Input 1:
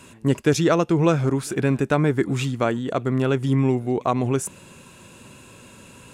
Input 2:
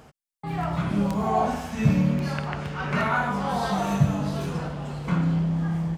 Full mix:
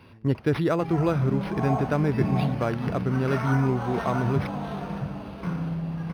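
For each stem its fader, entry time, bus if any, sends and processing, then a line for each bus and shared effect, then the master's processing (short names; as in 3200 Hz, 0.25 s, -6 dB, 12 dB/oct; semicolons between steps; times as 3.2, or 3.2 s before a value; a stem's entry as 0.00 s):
-5.5 dB, 0.00 s, no send, no echo send, bell 95 Hz +9 dB 0.77 oct
+1.0 dB, 0.35 s, no send, echo send -11.5 dB, auto duck -7 dB, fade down 1.10 s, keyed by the first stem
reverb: off
echo: echo 0.664 s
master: decimation joined by straight lines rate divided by 6×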